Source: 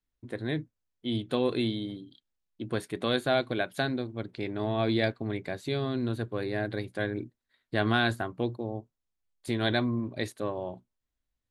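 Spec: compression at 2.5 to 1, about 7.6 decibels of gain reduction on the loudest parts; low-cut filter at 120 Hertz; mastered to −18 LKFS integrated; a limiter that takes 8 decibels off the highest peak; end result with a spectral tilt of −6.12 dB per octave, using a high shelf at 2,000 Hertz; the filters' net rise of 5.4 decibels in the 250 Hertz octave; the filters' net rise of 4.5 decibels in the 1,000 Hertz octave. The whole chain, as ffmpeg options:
ffmpeg -i in.wav -af "highpass=120,equalizer=frequency=250:width_type=o:gain=6.5,equalizer=frequency=1000:width_type=o:gain=8,highshelf=frequency=2000:gain=-7.5,acompressor=threshold=-30dB:ratio=2.5,volume=18dB,alimiter=limit=-6.5dB:level=0:latency=1" out.wav

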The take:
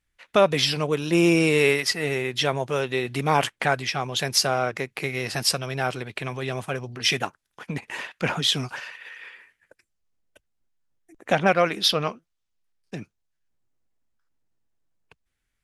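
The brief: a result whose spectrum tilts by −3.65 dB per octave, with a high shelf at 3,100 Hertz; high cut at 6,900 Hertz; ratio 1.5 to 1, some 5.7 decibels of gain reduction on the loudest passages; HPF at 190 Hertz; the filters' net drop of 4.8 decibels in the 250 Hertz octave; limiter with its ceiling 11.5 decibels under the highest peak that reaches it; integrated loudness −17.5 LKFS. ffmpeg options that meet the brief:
ffmpeg -i in.wav -af "highpass=190,lowpass=6900,equalizer=frequency=250:width_type=o:gain=-6,highshelf=frequency=3100:gain=-4,acompressor=threshold=-31dB:ratio=1.5,volume=17.5dB,alimiter=limit=-6dB:level=0:latency=1" out.wav

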